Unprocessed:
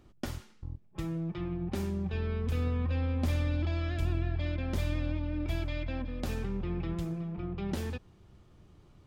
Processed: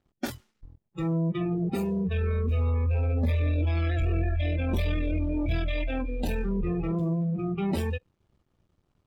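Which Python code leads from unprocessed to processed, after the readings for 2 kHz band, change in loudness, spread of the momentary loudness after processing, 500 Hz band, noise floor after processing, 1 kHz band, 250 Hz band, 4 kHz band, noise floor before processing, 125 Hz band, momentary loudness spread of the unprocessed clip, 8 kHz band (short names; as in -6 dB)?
+5.0 dB, +6.0 dB, 6 LU, +6.5 dB, -76 dBFS, +5.0 dB, +6.0 dB, +3.0 dB, -59 dBFS, +5.5 dB, 9 LU, n/a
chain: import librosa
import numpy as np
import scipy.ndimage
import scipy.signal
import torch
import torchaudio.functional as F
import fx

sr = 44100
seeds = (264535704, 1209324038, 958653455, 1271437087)

y = fx.leveller(x, sr, passes=3)
y = fx.noise_reduce_blind(y, sr, reduce_db=21)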